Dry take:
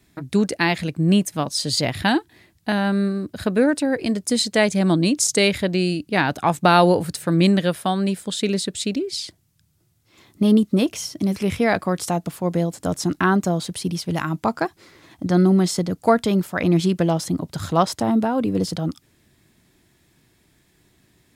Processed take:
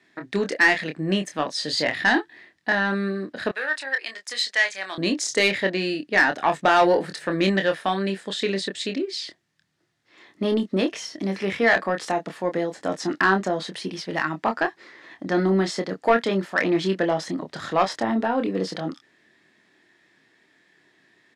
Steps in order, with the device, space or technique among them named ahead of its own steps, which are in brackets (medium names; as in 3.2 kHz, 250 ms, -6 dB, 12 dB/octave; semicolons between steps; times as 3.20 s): intercom (band-pass 310–4500 Hz; peaking EQ 1.8 kHz +11 dB 0.27 oct; saturation -10 dBFS, distortion -14 dB; doubling 26 ms -6.5 dB); 3.51–4.98 s: high-pass 1.2 kHz 12 dB/octave